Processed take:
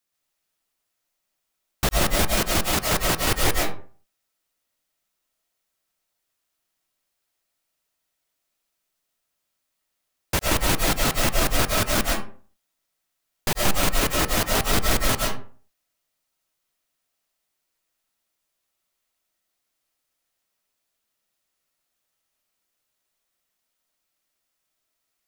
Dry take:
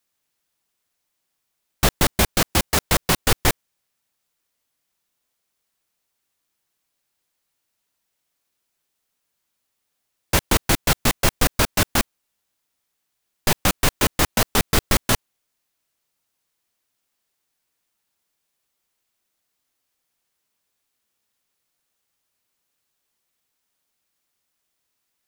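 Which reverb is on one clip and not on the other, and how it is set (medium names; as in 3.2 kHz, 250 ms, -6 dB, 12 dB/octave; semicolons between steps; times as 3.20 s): algorithmic reverb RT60 0.43 s, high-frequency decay 0.6×, pre-delay 80 ms, DRR -1.5 dB; trim -5 dB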